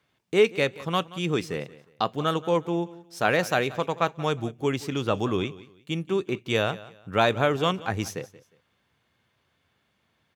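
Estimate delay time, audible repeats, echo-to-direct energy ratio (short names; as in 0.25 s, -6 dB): 0.179 s, 2, -18.0 dB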